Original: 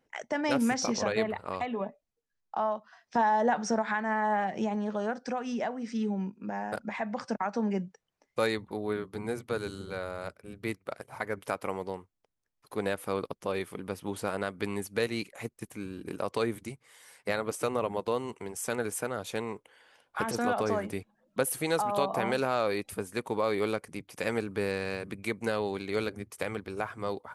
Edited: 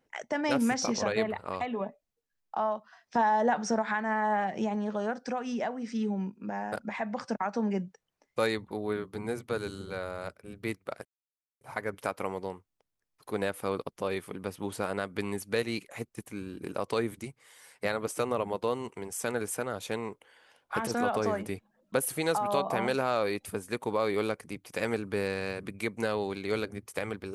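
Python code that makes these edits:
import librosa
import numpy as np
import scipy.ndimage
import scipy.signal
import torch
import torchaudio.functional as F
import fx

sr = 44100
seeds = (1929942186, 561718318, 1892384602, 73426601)

y = fx.edit(x, sr, fx.insert_silence(at_s=11.05, length_s=0.56), tone=tone)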